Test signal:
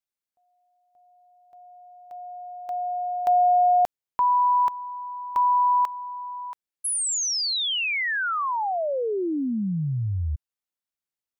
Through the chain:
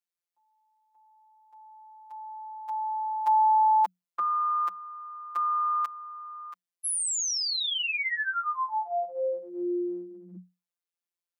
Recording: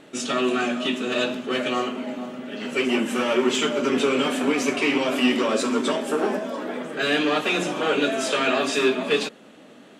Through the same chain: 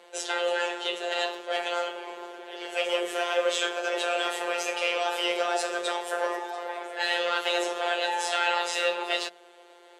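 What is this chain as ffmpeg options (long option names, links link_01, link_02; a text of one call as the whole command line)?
ffmpeg -i in.wav -af "lowshelf=frequency=160:gain=-4.5,afftfilt=real='hypot(re,im)*cos(PI*b)':imag='0':win_size=1024:overlap=0.75,afreqshift=180" out.wav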